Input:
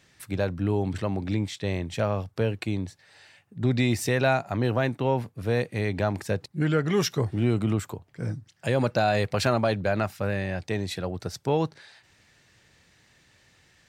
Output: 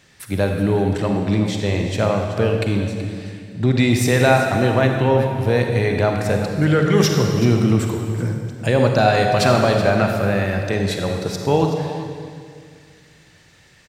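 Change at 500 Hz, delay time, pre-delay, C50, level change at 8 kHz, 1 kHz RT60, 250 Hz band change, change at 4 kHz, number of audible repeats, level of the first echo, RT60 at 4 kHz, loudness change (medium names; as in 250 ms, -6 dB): +9.0 dB, 378 ms, 37 ms, 3.0 dB, +8.5 dB, 1.9 s, +9.0 dB, +8.5 dB, 1, -13.5 dB, 1.8 s, +8.5 dB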